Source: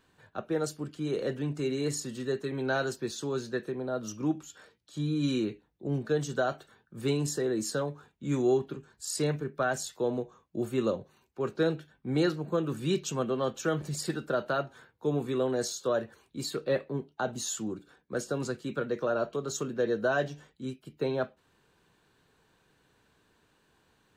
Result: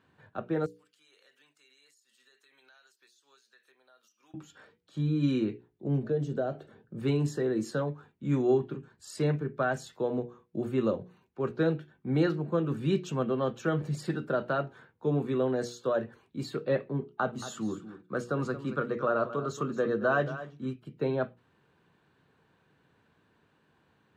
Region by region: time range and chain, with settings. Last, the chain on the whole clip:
0.66–4.34 HPF 1200 Hz 6 dB/oct + differentiator + compressor, threshold -55 dBFS
6.03–6.99 resonant low shelf 750 Hz +7.5 dB, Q 1.5 + compressor 1.5:1, threshold -44 dBFS
17–20.83 bell 1200 Hz +10.5 dB 0.32 oct + echo 0.226 s -13.5 dB
whole clip: HPF 100 Hz; tone controls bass +5 dB, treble -13 dB; notches 60/120/180/240/300/360/420/480 Hz

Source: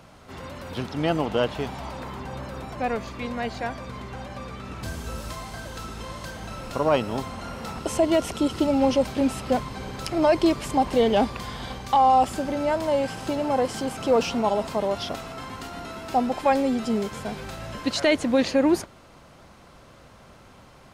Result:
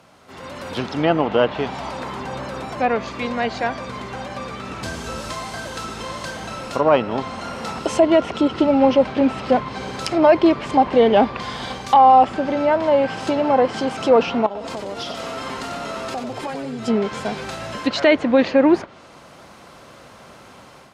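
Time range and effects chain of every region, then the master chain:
14.46–16.88 comb 4.4 ms, depth 31% + compressor 16:1, threshold -32 dBFS + frequency-shifting echo 92 ms, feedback 52%, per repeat -130 Hz, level -6 dB
whole clip: treble ducked by the level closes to 2700 Hz, closed at -21 dBFS; HPF 220 Hz 6 dB/oct; AGC gain up to 8 dB

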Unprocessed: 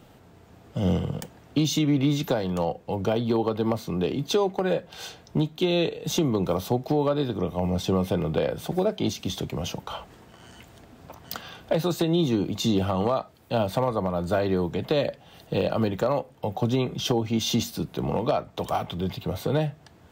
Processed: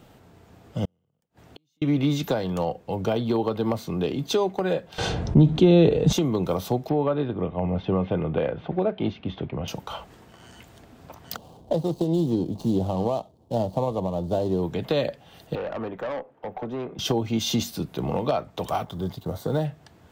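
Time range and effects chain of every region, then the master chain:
0.85–1.82 compressor 4:1, threshold -30 dBFS + flipped gate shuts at -31 dBFS, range -40 dB
4.98–6.13 LPF 11000 Hz 24 dB/oct + tilt -3.5 dB/oct + fast leveller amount 50%
6.89–9.68 LPF 2900 Hz 24 dB/oct + mismatched tape noise reduction decoder only
11.36–14.63 median filter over 25 samples + band shelf 1800 Hz -14.5 dB 1.3 oct
15.55–16.99 three-band isolator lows -14 dB, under 250 Hz, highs -22 dB, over 2100 Hz + tube stage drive 26 dB, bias 0.2
18.84–19.65 G.711 law mismatch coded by A + bell 2500 Hz -14 dB 0.62 oct
whole clip: dry

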